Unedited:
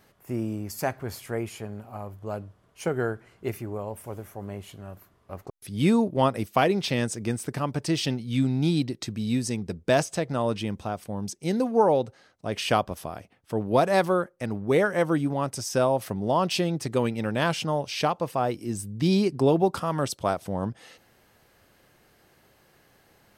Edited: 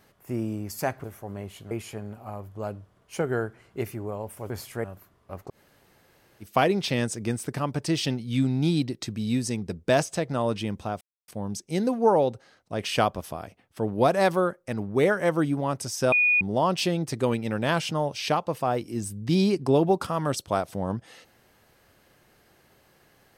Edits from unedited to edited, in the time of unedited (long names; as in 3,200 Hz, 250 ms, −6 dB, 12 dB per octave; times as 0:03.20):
0:01.04–0:01.38: swap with 0:04.17–0:04.84
0:05.54–0:06.45: fill with room tone, crossfade 0.10 s
0:11.01: splice in silence 0.27 s
0:15.85–0:16.14: beep over 2,460 Hz −17.5 dBFS